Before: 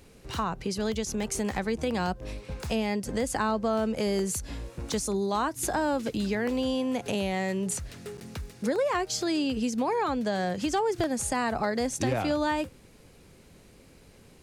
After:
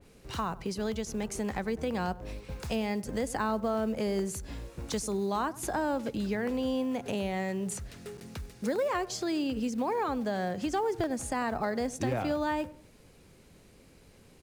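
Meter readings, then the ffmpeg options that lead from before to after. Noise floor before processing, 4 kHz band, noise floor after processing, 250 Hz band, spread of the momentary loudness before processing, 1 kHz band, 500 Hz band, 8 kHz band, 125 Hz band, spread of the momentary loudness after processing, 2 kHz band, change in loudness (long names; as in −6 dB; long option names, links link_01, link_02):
−55 dBFS, −6.0 dB, −58 dBFS, −3.0 dB, 7 LU, −3.0 dB, −3.0 dB, −6.5 dB, −3.0 dB, 9 LU, −4.0 dB, −3.0 dB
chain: -filter_complex "[0:a]asplit=2[link_01][link_02];[link_02]adelay=96,lowpass=frequency=1100:poles=1,volume=-17dB,asplit=2[link_03][link_04];[link_04]adelay=96,lowpass=frequency=1100:poles=1,volume=0.38,asplit=2[link_05][link_06];[link_06]adelay=96,lowpass=frequency=1100:poles=1,volume=0.38[link_07];[link_01][link_03][link_05][link_07]amix=inputs=4:normalize=0,acrusher=bits=7:mode=log:mix=0:aa=0.000001,adynamicequalizer=threshold=0.00562:dfrequency=2500:dqfactor=0.7:tfrequency=2500:tqfactor=0.7:attack=5:release=100:ratio=0.375:range=2.5:mode=cutabove:tftype=highshelf,volume=-3dB"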